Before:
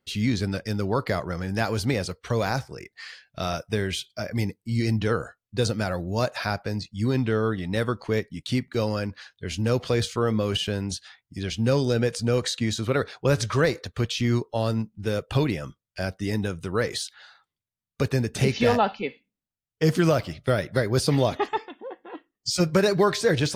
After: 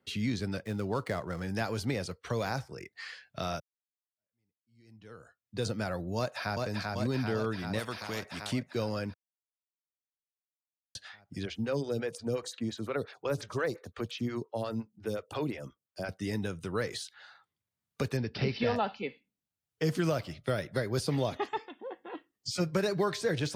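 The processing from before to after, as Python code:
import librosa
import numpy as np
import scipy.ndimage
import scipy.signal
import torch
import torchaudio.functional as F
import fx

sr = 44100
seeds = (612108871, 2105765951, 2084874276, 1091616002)

y = fx.median_filter(x, sr, points=9, at=(0.63, 1.42))
y = fx.echo_throw(y, sr, start_s=6.17, length_s=0.5, ms=390, feedback_pct=70, wet_db=-3.0)
y = fx.spectral_comp(y, sr, ratio=2.0, at=(7.78, 8.51), fade=0.02)
y = fx.stagger_phaser(y, sr, hz=5.7, at=(11.45, 16.09))
y = fx.resample_bad(y, sr, factor=4, down='none', up='filtered', at=(18.17, 18.76))
y = fx.edit(y, sr, fx.fade_in_span(start_s=3.6, length_s=2.06, curve='exp'),
    fx.silence(start_s=9.14, length_s=1.81), tone=tone)
y = scipy.signal.sosfilt(scipy.signal.butter(2, 76.0, 'highpass', fs=sr, output='sos'), y)
y = fx.band_squash(y, sr, depth_pct=40)
y = y * 10.0 ** (-7.5 / 20.0)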